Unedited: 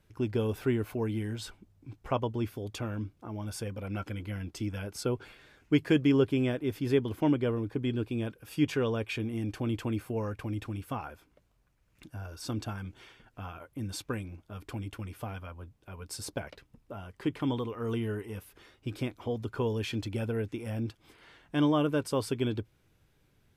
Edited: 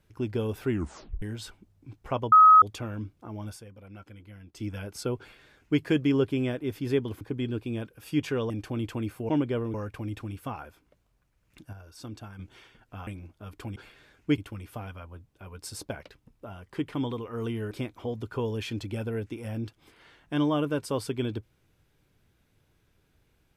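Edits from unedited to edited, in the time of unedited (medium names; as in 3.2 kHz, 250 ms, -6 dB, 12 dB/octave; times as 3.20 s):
0.70 s: tape stop 0.52 s
2.32–2.62 s: bleep 1.27 kHz -11 dBFS
3.47–4.65 s: dip -11 dB, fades 0.13 s
5.19–5.81 s: copy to 14.85 s
7.21–7.66 s: move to 10.19 s
8.95–9.40 s: delete
12.18–12.84 s: gain -6.5 dB
13.52–14.16 s: delete
18.18–18.93 s: delete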